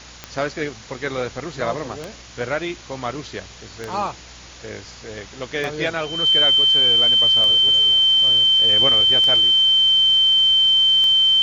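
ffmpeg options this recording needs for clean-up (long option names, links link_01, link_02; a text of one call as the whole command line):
ffmpeg -i in.wav -af "adeclick=threshold=4,bandreject=frequency=60.8:width_type=h:width=4,bandreject=frequency=121.6:width_type=h:width=4,bandreject=frequency=182.4:width_type=h:width=4,bandreject=frequency=243.2:width_type=h:width=4,bandreject=frequency=3100:width=30,afftdn=noise_reduction=24:noise_floor=-41" out.wav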